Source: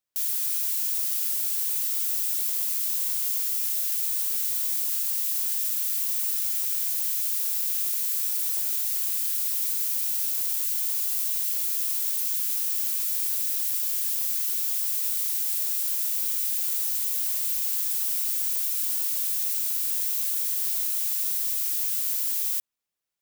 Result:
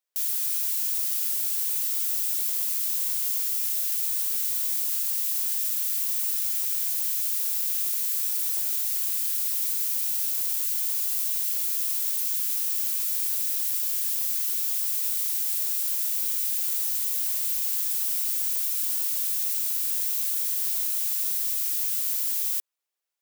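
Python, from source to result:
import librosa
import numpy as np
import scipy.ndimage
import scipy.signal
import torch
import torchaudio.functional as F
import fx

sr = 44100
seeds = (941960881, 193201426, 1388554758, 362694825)

y = scipy.signal.sosfilt(scipy.signal.butter(4, 370.0, 'highpass', fs=sr, output='sos'), x)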